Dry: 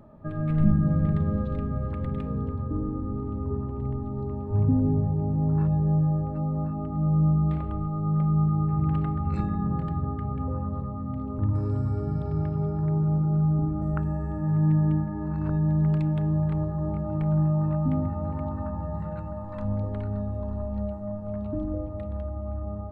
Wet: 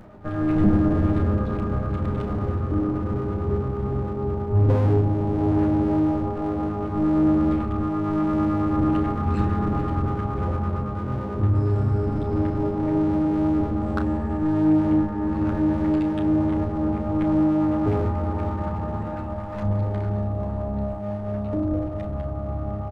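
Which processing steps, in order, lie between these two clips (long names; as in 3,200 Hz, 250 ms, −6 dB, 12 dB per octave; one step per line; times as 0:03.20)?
lower of the sound and its delayed copy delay 9.9 ms
reversed playback
upward compression, threshold −42 dBFS
reversed playback
double-tracking delay 32 ms −9 dB
soft clipping −15 dBFS, distortion −24 dB
level +6 dB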